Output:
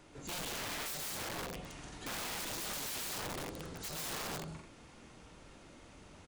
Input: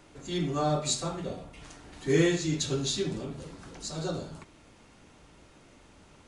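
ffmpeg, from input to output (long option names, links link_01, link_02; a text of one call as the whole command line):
ffmpeg -i in.wav -af "acompressor=threshold=-34dB:ratio=3,aecho=1:1:131.2|174.9|218.7:0.708|0.562|0.447,aeval=exprs='(mod(42.2*val(0)+1,2)-1)/42.2':channel_layout=same,volume=-3dB" out.wav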